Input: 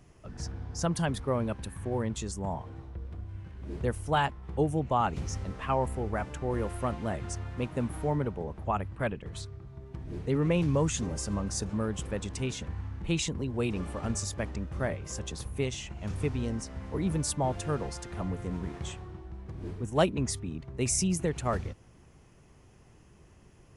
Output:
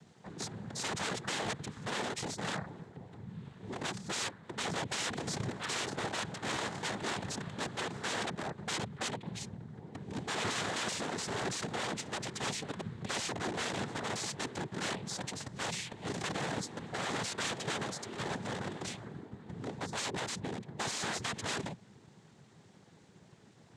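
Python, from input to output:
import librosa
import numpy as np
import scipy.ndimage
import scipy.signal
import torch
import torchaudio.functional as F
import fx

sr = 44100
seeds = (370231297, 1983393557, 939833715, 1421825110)

y = (np.mod(10.0 ** (29.5 / 20.0) * x + 1.0, 2.0) - 1.0) / 10.0 ** (29.5 / 20.0)
y = fx.noise_vocoder(y, sr, seeds[0], bands=6)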